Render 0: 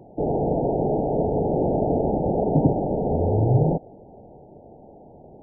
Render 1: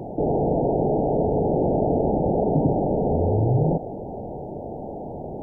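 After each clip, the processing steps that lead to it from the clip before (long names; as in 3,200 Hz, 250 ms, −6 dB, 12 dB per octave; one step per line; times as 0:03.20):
envelope flattener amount 50%
level −3 dB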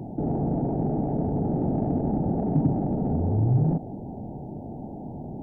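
octave-band graphic EQ 125/250/500 Hz +4/+6/−10 dB
in parallel at −11 dB: soft clipping −22.5 dBFS, distortion −8 dB
on the sum: level −5.5 dB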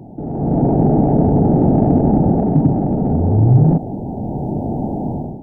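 automatic gain control gain up to 17 dB
level −1 dB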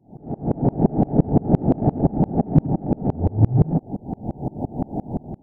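tremolo with a ramp in dB swelling 5.8 Hz, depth 30 dB
level +2 dB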